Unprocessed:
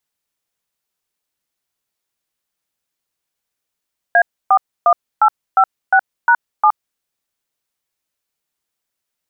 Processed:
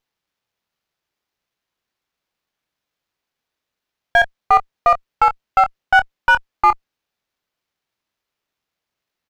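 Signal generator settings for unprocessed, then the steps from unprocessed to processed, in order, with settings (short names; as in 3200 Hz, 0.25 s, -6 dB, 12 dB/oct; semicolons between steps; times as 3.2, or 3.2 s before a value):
DTMF "A41856#7", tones 69 ms, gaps 0.286 s, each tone -10 dBFS
doubler 25 ms -10 dB; running maximum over 5 samples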